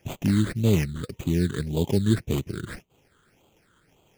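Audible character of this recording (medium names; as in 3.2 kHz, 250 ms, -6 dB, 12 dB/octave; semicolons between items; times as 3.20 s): aliases and images of a low sample rate 4.1 kHz, jitter 20%; phasing stages 8, 1.8 Hz, lowest notch 710–1700 Hz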